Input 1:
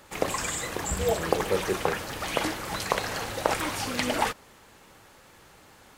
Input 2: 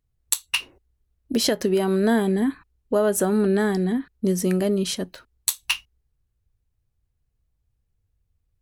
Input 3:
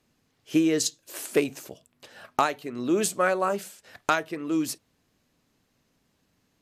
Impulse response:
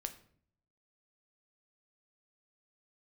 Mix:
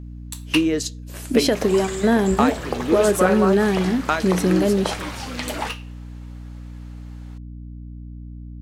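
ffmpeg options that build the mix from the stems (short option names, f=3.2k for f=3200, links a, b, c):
-filter_complex "[0:a]equalizer=f=4.8k:w=0.65:g=4,flanger=delay=9.4:depth=6.1:regen=65:speed=0.56:shape=triangular,adelay=1400,volume=2.5dB[a];[1:a]volume=0dB,asplit=2[b][c];[c]volume=-6dB[d];[2:a]volume=1dB,asplit=3[e][f][g];[f]volume=-13dB[h];[g]apad=whole_len=380119[i];[b][i]sidechaingate=range=-33dB:threshold=-52dB:ratio=16:detection=peak[j];[3:a]atrim=start_sample=2205[k];[d][h]amix=inputs=2:normalize=0[l];[l][k]afir=irnorm=-1:irlink=0[m];[a][j][e][m]amix=inputs=4:normalize=0,highshelf=f=4.4k:g=-6.5,aeval=exprs='val(0)+0.02*(sin(2*PI*60*n/s)+sin(2*PI*2*60*n/s)/2+sin(2*PI*3*60*n/s)/3+sin(2*PI*4*60*n/s)/4+sin(2*PI*5*60*n/s)/5)':c=same"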